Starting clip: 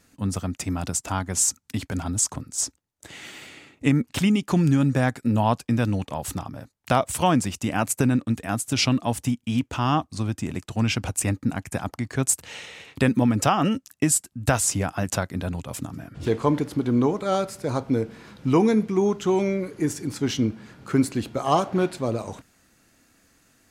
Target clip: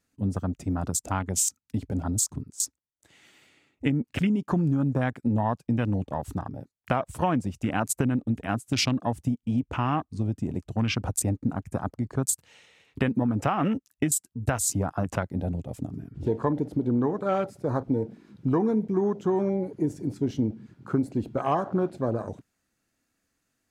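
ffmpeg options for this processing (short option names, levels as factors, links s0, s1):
-af "afwtdn=0.0251,acompressor=threshold=0.0891:ratio=4"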